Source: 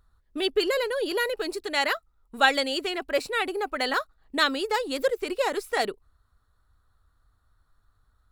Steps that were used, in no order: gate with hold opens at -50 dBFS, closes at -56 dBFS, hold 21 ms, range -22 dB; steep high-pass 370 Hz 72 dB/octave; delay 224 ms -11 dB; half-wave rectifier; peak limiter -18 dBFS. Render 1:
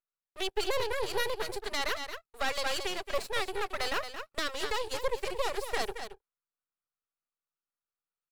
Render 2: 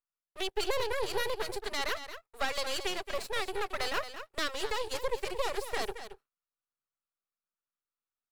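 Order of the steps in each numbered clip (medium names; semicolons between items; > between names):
steep high-pass > gate with hold > delay > half-wave rectifier > peak limiter; peak limiter > delay > gate with hold > steep high-pass > half-wave rectifier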